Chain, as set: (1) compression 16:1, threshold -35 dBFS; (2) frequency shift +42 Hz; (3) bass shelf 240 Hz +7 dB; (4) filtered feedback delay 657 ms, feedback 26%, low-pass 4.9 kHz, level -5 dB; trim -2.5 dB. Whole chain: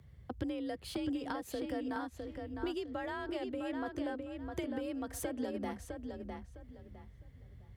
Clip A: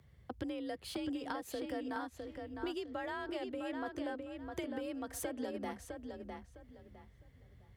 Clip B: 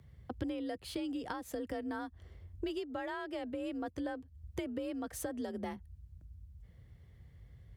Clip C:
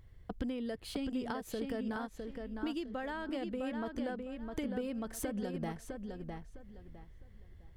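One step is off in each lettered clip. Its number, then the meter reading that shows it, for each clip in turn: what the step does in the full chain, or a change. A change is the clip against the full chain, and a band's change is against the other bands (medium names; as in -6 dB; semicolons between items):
3, 125 Hz band -5.5 dB; 4, momentary loudness spread change +3 LU; 2, momentary loudness spread change +1 LU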